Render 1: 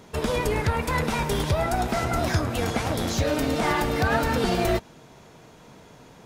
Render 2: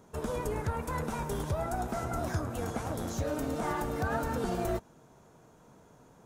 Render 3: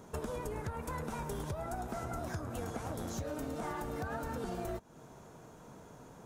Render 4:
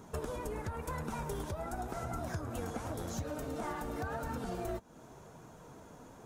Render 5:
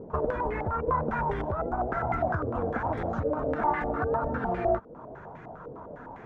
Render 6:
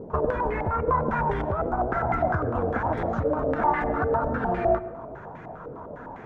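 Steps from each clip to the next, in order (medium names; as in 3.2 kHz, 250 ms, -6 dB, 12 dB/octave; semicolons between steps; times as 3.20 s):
high-order bell 3.1 kHz -8.5 dB; trim -8.5 dB
compression 6:1, threshold -41 dBFS, peak gain reduction 13.5 dB; trim +4.5 dB
flange 0.92 Hz, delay 0.7 ms, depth 3.5 ms, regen -56%; trim +4.5 dB
step-sequenced low-pass 9.9 Hz 490–2000 Hz; trim +6.5 dB
reverberation RT60 0.90 s, pre-delay 98 ms, DRR 14.5 dB; trim +3.5 dB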